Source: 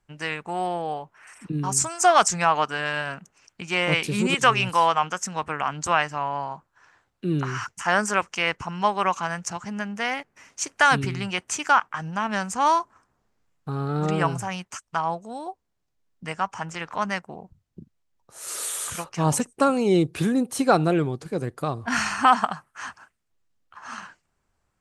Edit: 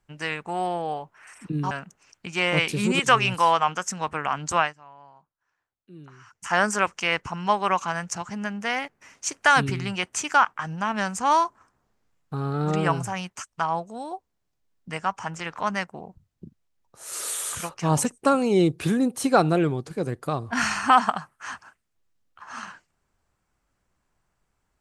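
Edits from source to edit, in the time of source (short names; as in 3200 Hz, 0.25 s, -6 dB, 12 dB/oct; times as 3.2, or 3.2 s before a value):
1.71–3.06 cut
5.95–7.83 dip -20.5 dB, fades 0.14 s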